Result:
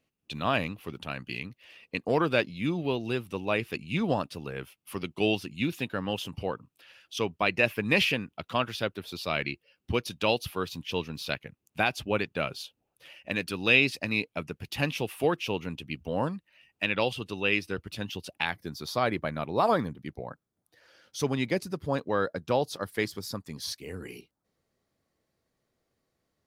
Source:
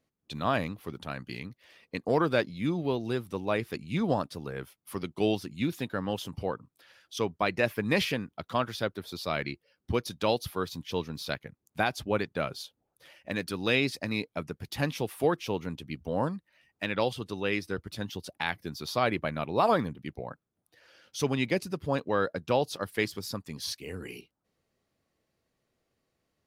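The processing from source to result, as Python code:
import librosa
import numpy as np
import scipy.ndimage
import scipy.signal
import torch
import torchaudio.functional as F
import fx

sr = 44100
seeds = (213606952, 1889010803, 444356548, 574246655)

y = fx.peak_eq(x, sr, hz=2700.0, db=fx.steps((0.0, 10.5), (18.45, -4.0)), octaves=0.4)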